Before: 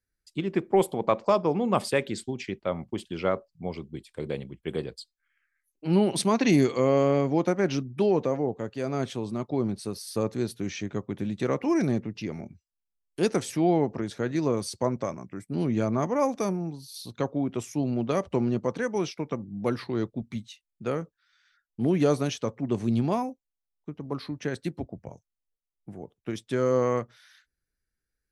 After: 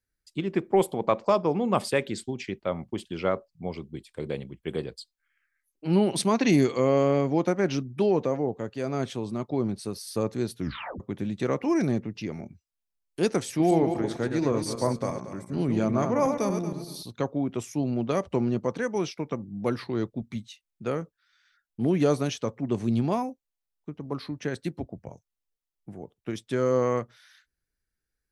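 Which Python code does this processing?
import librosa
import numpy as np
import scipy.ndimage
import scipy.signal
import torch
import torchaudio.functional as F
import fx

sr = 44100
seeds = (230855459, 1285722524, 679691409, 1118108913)

y = fx.reverse_delay_fb(x, sr, ms=116, feedback_pct=48, wet_db=-6, at=(13.48, 17.03))
y = fx.edit(y, sr, fx.tape_stop(start_s=10.59, length_s=0.41), tone=tone)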